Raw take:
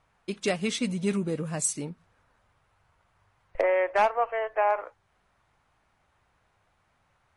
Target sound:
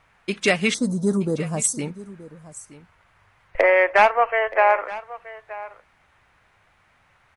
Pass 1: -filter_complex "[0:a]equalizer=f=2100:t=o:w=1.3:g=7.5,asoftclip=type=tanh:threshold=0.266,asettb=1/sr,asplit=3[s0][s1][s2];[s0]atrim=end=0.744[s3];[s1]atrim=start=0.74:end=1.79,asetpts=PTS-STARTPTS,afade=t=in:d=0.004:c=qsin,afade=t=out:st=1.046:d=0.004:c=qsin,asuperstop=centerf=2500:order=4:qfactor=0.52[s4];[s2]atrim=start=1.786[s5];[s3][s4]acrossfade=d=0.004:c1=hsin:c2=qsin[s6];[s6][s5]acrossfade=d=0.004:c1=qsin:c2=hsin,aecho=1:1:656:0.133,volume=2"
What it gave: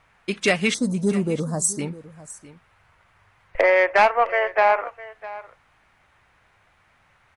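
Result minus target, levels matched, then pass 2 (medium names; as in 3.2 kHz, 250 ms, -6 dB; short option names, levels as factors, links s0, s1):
saturation: distortion +12 dB; echo 269 ms early
-filter_complex "[0:a]equalizer=f=2100:t=o:w=1.3:g=7.5,asoftclip=type=tanh:threshold=0.596,asettb=1/sr,asplit=3[s0][s1][s2];[s0]atrim=end=0.744[s3];[s1]atrim=start=0.74:end=1.79,asetpts=PTS-STARTPTS,afade=t=in:d=0.004:c=qsin,afade=t=out:st=1.046:d=0.004:c=qsin,asuperstop=centerf=2500:order=4:qfactor=0.52[s4];[s2]atrim=start=1.786[s5];[s3][s4]acrossfade=d=0.004:c1=hsin:c2=qsin[s6];[s6][s5]acrossfade=d=0.004:c1=qsin:c2=hsin,aecho=1:1:925:0.133,volume=2"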